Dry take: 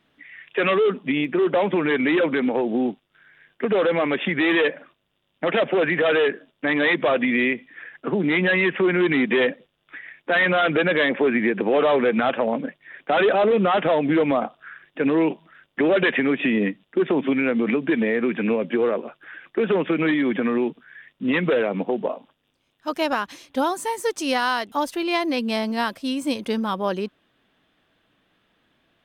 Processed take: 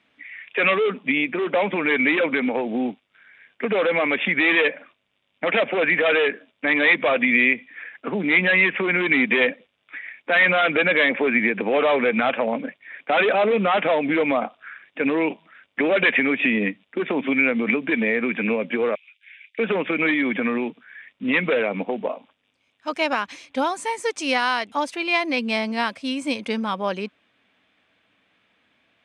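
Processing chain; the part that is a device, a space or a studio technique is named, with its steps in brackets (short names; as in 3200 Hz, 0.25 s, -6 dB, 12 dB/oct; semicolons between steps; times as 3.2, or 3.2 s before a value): 18.95–19.59 elliptic high-pass 2200 Hz, stop band 80 dB; car door speaker (speaker cabinet 88–9200 Hz, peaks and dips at 150 Hz -9 dB, 360 Hz -6 dB, 2300 Hz +9 dB)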